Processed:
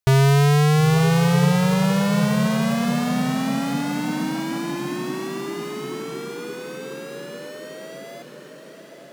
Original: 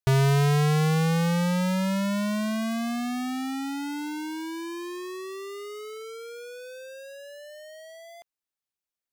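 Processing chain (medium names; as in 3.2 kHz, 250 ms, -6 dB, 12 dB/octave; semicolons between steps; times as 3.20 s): echo that smears into a reverb 902 ms, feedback 58%, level -8 dB; trim +5.5 dB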